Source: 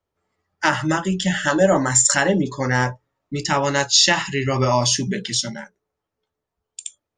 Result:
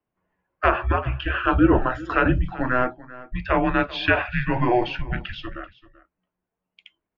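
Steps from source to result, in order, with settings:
single-sideband voice off tune −250 Hz 210–3,000 Hz
single-tap delay 387 ms −19 dB

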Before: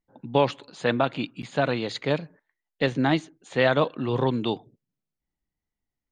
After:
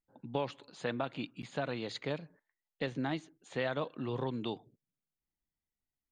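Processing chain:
downward compressor 2 to 1, threshold −26 dBFS, peak gain reduction 6.5 dB
level −8 dB

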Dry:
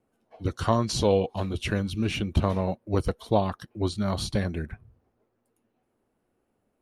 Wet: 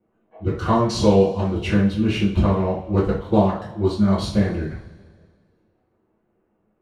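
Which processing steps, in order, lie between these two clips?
adaptive Wiener filter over 9 samples
low-pass filter 4,000 Hz 6 dB per octave
coupled-rooms reverb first 0.41 s, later 1.9 s, from −20 dB, DRR −9 dB
level −3 dB

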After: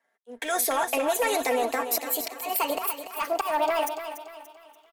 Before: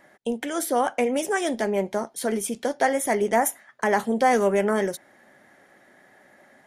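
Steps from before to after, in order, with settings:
gliding playback speed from 99% → 172%
Bessel high-pass filter 530 Hz, order 2
comb filter 4.4 ms, depth 65%
leveller curve on the samples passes 2
volume swells 303 ms
brickwall limiter −13 dBFS, peak gain reduction 5 dB
downward compressor, threshold −23 dBFS, peak gain reduction 7 dB
on a send: repeating echo 289 ms, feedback 52%, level −8 dB
on the sum: multiband upward and downward expander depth 40%

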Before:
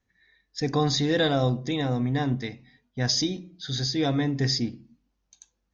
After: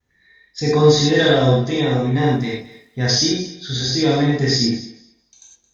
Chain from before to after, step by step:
feedback echo with a high-pass in the loop 219 ms, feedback 18%, high-pass 340 Hz, level −16 dB
0:02.15–0:03.23: surface crackle 67 per second −49 dBFS
pitch vibrato 0.52 Hz 22 cents
reverb whose tail is shaped and stops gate 140 ms flat, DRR −5.5 dB
level +2 dB

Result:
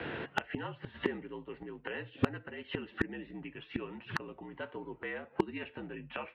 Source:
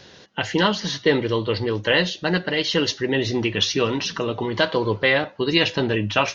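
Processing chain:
single-sideband voice off tune −60 Hz 170–2,700 Hz
gate with flip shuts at −22 dBFS, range −31 dB
gain into a clipping stage and back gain 28 dB
level +10 dB

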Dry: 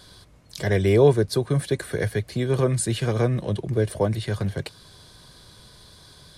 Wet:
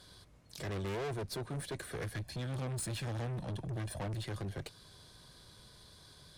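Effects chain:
0:02.14–0:04.24: comb filter 1.2 ms, depth 73%
tube saturation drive 29 dB, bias 0.4
level −7 dB

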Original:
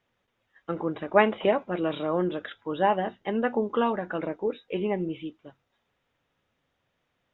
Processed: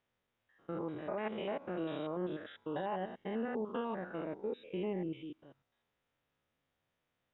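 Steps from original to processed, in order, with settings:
spectrum averaged block by block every 100 ms
brickwall limiter −21.5 dBFS, peak gain reduction 12 dB
level −7 dB

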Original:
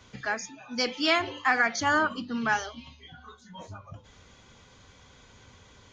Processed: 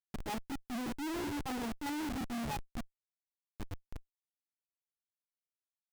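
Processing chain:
formant resonators in series u
gain on a spectral selection 0:02.23–0:02.68, 200–1,300 Hz −8 dB
comparator with hysteresis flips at −49 dBFS
brickwall limiter −48.5 dBFS, peak gain reduction 11.5 dB
level +12.5 dB

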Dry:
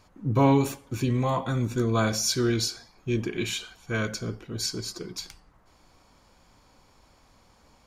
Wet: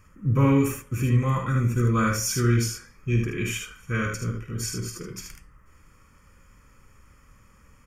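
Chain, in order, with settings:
phaser with its sweep stopped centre 1,700 Hz, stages 4
comb filter 1.6 ms, depth 41%
ambience of single reflections 50 ms −8.5 dB, 76 ms −5 dB
level +3.5 dB

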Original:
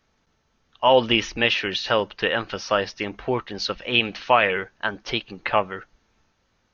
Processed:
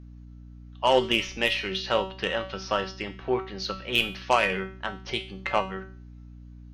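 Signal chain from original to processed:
dynamic equaliser 1,600 Hz, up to −5 dB, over −38 dBFS, Q 5.4
harmonic generator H 3 −14 dB, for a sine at −3.5 dBFS
sine wavefolder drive 5 dB, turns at −2 dBFS
tuned comb filter 190 Hz, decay 0.42 s, harmonics all, mix 80%
mains hum 60 Hz, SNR 16 dB
level +4 dB

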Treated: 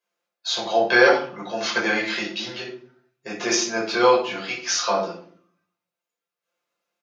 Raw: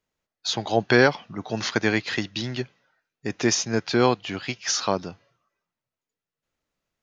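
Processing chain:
high-pass filter 420 Hz 12 dB per octave
comb filter 5.8 ms, depth 48%
rectangular room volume 510 cubic metres, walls furnished, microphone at 5.4 metres
level −5.5 dB

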